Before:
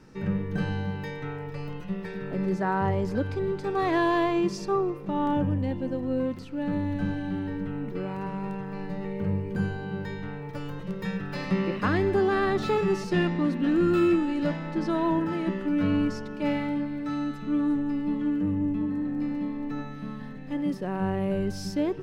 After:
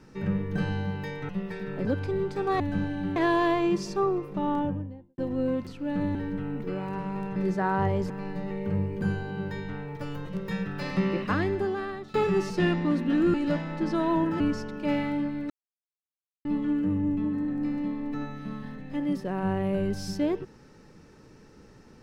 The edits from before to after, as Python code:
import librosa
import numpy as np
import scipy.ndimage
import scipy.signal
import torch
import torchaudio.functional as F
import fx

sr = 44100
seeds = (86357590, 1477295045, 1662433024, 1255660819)

y = fx.studio_fade_out(x, sr, start_s=5.07, length_s=0.83)
y = fx.edit(y, sr, fx.cut(start_s=1.29, length_s=0.54),
    fx.move(start_s=2.39, length_s=0.74, to_s=8.64),
    fx.move(start_s=6.87, length_s=0.56, to_s=3.88),
    fx.fade_out_to(start_s=11.72, length_s=0.96, floor_db=-21.5),
    fx.cut(start_s=13.88, length_s=0.41),
    fx.cut(start_s=15.35, length_s=0.62),
    fx.silence(start_s=17.07, length_s=0.95), tone=tone)